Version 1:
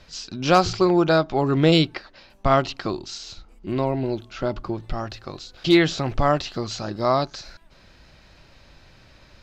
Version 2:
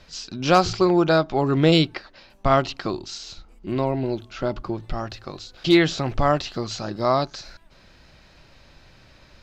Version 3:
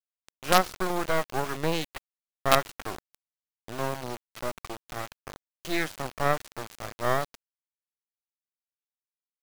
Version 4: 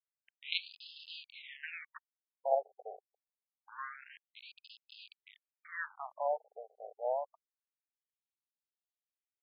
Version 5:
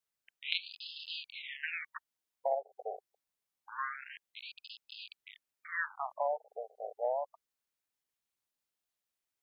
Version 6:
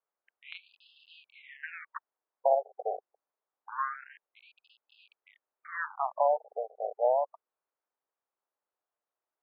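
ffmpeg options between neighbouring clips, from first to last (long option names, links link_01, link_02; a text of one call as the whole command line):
ffmpeg -i in.wav -af "bandreject=frequency=50:width_type=h:width=6,bandreject=frequency=100:width_type=h:width=6" out.wav
ffmpeg -i in.wav -filter_complex "[0:a]acrossover=split=480 2100:gain=0.126 1 0.224[link_01][link_02][link_03];[link_01][link_02][link_03]amix=inputs=3:normalize=0,acrusher=bits=3:dc=4:mix=0:aa=0.000001" out.wav
ffmpeg -i in.wav -af "afftfilt=real='re*between(b*sr/1024,550*pow(3700/550,0.5+0.5*sin(2*PI*0.26*pts/sr))/1.41,550*pow(3700/550,0.5+0.5*sin(2*PI*0.26*pts/sr))*1.41)':imag='im*between(b*sr/1024,550*pow(3700/550,0.5+0.5*sin(2*PI*0.26*pts/sr))/1.41,550*pow(3700/550,0.5+0.5*sin(2*PI*0.26*pts/sr))*1.41)':win_size=1024:overlap=0.75,volume=-4.5dB" out.wav
ffmpeg -i in.wav -af "acompressor=threshold=-35dB:ratio=6,volume=6dB" out.wav
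ffmpeg -i in.wav -af "asuperpass=centerf=710:order=4:qfactor=0.79,volume=7.5dB" out.wav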